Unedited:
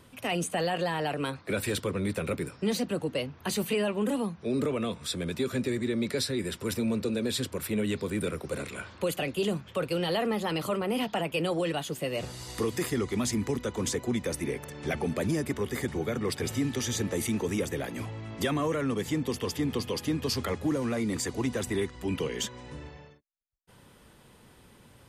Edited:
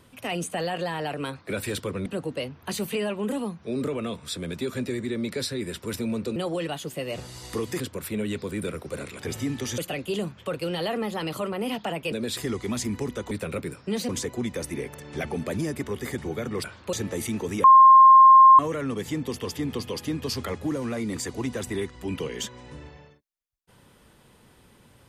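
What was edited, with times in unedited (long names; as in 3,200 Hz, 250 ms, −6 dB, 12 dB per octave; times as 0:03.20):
0:02.06–0:02.84: move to 0:13.79
0:07.14–0:07.39: swap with 0:11.41–0:12.85
0:08.78–0:09.07: swap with 0:16.34–0:16.93
0:17.64–0:18.59: beep over 1,060 Hz −8.5 dBFS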